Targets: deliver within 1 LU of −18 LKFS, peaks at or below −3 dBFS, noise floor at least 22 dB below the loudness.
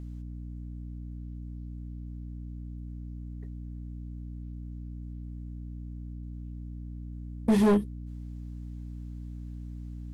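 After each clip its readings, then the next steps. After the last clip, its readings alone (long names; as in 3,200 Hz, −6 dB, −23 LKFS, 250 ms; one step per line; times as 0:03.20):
share of clipped samples 0.6%; peaks flattened at −18.0 dBFS; mains hum 60 Hz; hum harmonics up to 300 Hz; level of the hum −37 dBFS; integrated loudness −35.5 LKFS; sample peak −18.0 dBFS; target loudness −18.0 LKFS
→ clipped peaks rebuilt −18 dBFS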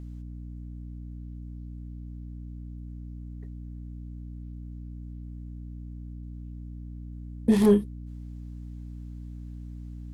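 share of clipped samples 0.0%; mains hum 60 Hz; hum harmonics up to 300 Hz; level of the hum −37 dBFS
→ hum removal 60 Hz, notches 5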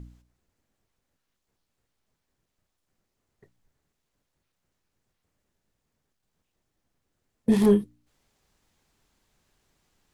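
mains hum none found; integrated loudness −22.5 LKFS; sample peak −10.0 dBFS; target loudness −18.0 LKFS
→ level +4.5 dB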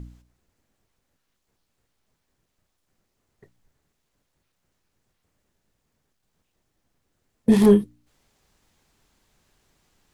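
integrated loudness −18.0 LKFS; sample peak −5.5 dBFS; background noise floor −76 dBFS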